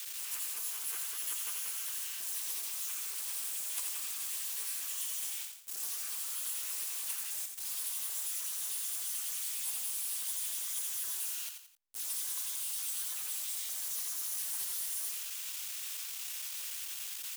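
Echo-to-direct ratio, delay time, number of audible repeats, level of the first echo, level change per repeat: −5.5 dB, 87 ms, 3, −6.0 dB, −8.5 dB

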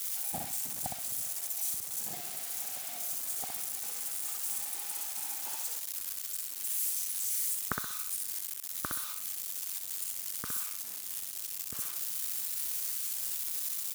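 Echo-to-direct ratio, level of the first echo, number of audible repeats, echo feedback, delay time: −3.5 dB, −4.0 dB, 3, 30%, 63 ms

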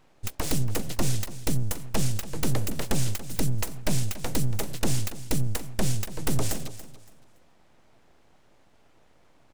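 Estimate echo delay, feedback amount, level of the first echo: 283 ms, 26%, −14.5 dB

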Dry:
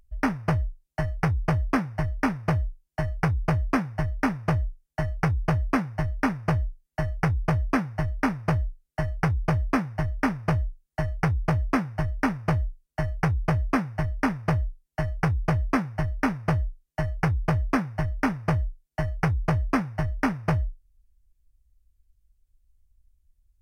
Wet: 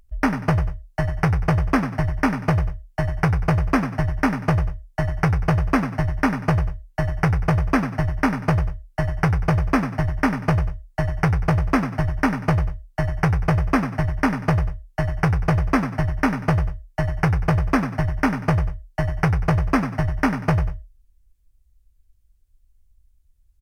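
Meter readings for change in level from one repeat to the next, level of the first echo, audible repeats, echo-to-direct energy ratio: −10.0 dB, −10.0 dB, 2, −9.5 dB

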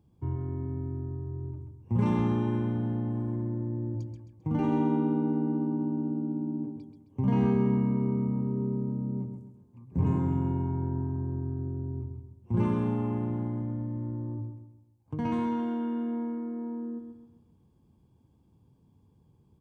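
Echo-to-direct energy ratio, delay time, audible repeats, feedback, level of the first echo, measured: −6.0 dB, 132 ms, 4, 40%, −7.0 dB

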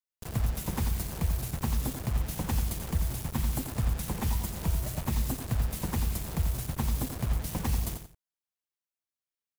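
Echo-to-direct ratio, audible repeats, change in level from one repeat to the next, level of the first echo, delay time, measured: −7.5 dB, 2, −12.0 dB, −8.0 dB, 88 ms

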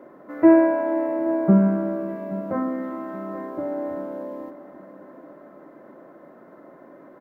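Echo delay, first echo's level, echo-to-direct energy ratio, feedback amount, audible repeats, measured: 826 ms, −16.5 dB, −15.5 dB, 45%, 3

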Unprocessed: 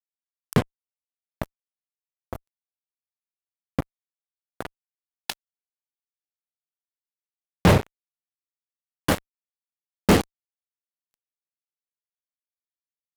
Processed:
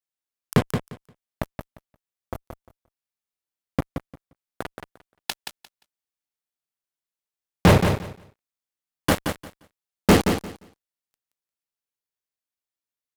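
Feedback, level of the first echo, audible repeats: 18%, −7.0 dB, 2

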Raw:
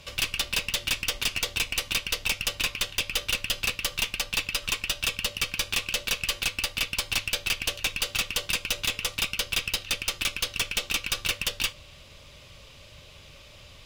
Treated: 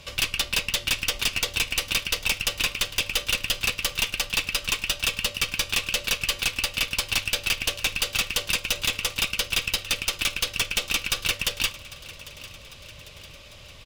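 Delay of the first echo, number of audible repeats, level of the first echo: 799 ms, 3, −18.0 dB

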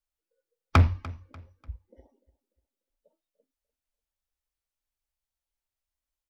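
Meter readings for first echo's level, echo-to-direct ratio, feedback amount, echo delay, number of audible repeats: −19.5 dB, −19.0 dB, 35%, 295 ms, 2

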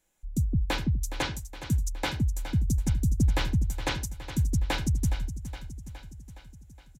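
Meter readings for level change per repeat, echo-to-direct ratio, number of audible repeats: −4.5 dB, −10.0 dB, 6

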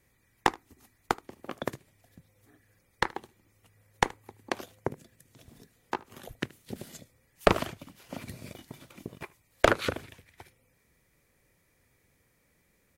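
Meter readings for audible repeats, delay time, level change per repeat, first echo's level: 1, 76 ms, repeats not evenly spaced, −23.0 dB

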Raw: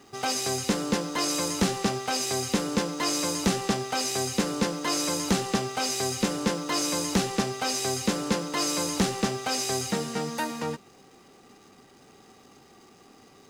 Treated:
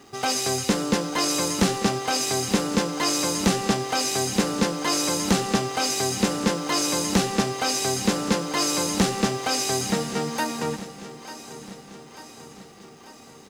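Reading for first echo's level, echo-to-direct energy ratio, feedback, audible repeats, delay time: −15.0 dB, −13.0 dB, 59%, 5, 893 ms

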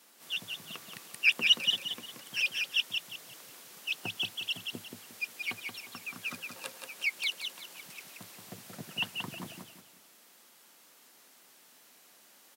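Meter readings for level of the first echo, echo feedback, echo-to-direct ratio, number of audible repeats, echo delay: −5.0 dB, 30%, −4.5 dB, 3, 178 ms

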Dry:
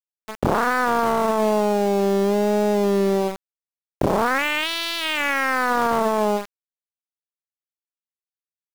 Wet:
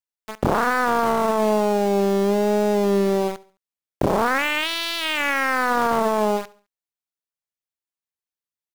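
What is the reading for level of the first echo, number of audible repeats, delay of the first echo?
−21.0 dB, 2, 70 ms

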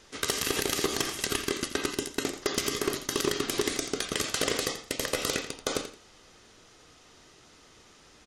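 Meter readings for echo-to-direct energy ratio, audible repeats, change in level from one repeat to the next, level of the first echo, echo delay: −11.5 dB, 2, −13.0 dB, −11.5 dB, 85 ms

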